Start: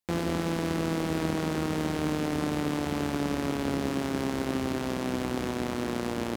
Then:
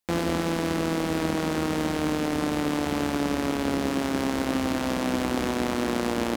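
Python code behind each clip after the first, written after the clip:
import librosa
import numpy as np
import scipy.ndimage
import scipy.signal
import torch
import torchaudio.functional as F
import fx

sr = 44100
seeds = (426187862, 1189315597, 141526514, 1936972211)

y = fx.peak_eq(x, sr, hz=120.0, db=-8.5, octaves=0.79)
y = fx.notch(y, sr, hz=390.0, q=12.0)
y = fx.rider(y, sr, range_db=10, speed_s=0.5)
y = y * librosa.db_to_amplitude(4.5)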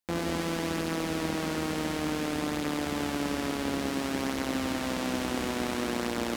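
y = fx.echo_wet_highpass(x, sr, ms=67, feedback_pct=82, hz=1600.0, wet_db=-4.0)
y = y * librosa.db_to_amplitude(-5.0)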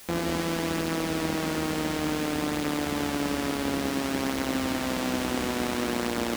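y = fx.dmg_noise_colour(x, sr, seeds[0], colour='white', level_db=-50.0)
y = y * librosa.db_to_amplitude(2.5)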